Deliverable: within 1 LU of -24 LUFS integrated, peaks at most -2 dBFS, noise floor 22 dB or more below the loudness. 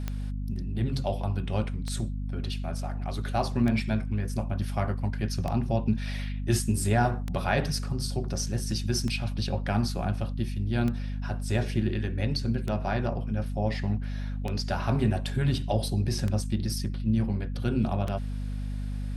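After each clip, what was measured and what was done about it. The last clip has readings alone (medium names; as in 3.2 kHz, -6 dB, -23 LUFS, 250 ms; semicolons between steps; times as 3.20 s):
clicks found 11; hum 50 Hz; highest harmonic 250 Hz; hum level -29 dBFS; loudness -29.5 LUFS; peak level -11.5 dBFS; loudness target -24.0 LUFS
-> de-click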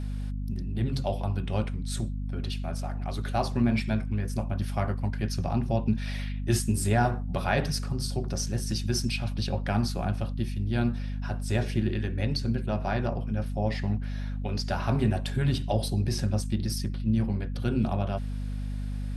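clicks found 0; hum 50 Hz; highest harmonic 250 Hz; hum level -29 dBFS
-> de-hum 50 Hz, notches 5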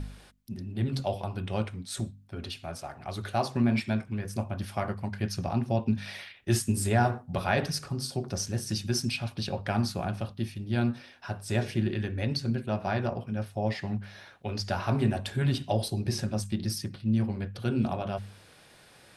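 hum not found; loudness -31.0 LUFS; peak level -11.5 dBFS; loudness target -24.0 LUFS
-> trim +7 dB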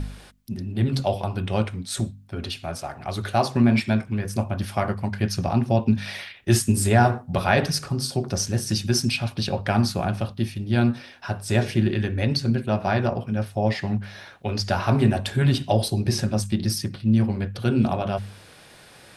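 loudness -24.0 LUFS; peak level -4.5 dBFS; noise floor -49 dBFS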